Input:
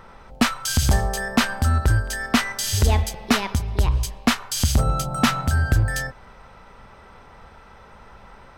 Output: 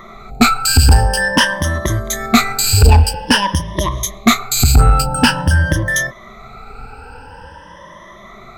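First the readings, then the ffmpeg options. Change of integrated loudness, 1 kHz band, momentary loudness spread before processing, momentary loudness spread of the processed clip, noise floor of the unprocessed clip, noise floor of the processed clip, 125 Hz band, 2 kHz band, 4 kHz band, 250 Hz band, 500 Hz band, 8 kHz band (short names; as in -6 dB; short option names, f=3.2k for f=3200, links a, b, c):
+8.0 dB, +9.0 dB, 3 LU, 9 LU, -47 dBFS, -38 dBFS, +7.0 dB, +9.0 dB, +9.5 dB, +6.5 dB, +8.0 dB, +9.0 dB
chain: -af "afftfilt=real='re*pow(10,22/40*sin(2*PI*(1.2*log(max(b,1)*sr/1024/100)/log(2)-(0.48)*(pts-256)/sr)))':imag='im*pow(10,22/40*sin(2*PI*(1.2*log(max(b,1)*sr/1024/100)/log(2)-(0.48)*(pts-256)/sr)))':win_size=1024:overlap=0.75,acontrast=64,volume=-1dB"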